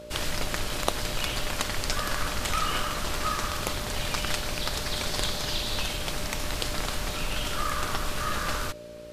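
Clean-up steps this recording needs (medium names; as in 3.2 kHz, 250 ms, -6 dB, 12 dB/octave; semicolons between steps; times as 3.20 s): de-hum 57.9 Hz, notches 10; band-stop 600 Hz, Q 30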